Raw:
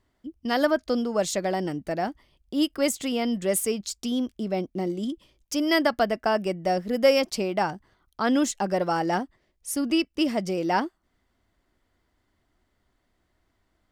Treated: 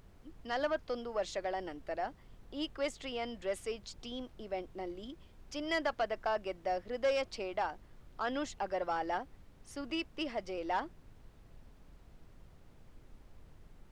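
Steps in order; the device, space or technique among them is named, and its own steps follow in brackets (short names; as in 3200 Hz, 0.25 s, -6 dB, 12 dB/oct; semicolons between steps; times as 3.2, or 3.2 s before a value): aircraft cabin announcement (BPF 470–3800 Hz; soft clip -17.5 dBFS, distortion -16 dB; brown noise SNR 15 dB); gain -7 dB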